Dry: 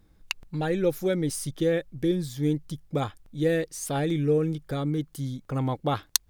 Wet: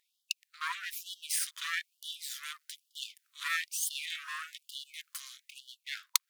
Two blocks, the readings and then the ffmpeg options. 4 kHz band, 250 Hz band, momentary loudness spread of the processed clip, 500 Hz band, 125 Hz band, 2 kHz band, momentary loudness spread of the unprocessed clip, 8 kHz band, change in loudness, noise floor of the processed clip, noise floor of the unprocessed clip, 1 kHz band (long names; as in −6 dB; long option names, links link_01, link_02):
0.0 dB, below −40 dB, 13 LU, below −40 dB, below −40 dB, +1.5 dB, 7 LU, −1.5 dB, −9.0 dB, −83 dBFS, −60 dBFS, −9.0 dB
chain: -filter_complex "[0:a]acrossover=split=280[link_01][link_02];[link_02]aeval=exprs='max(val(0),0)':channel_layout=same[link_03];[link_01][link_03]amix=inputs=2:normalize=0,lowshelf=frequency=420:gain=10,dynaudnorm=framelen=130:gausssize=11:maxgain=7.5dB,afftfilt=real='re*gte(b*sr/1024,970*pow(2900/970,0.5+0.5*sin(2*PI*1.1*pts/sr)))':imag='im*gte(b*sr/1024,970*pow(2900/970,0.5+0.5*sin(2*PI*1.1*pts/sr)))':win_size=1024:overlap=0.75,volume=1.5dB"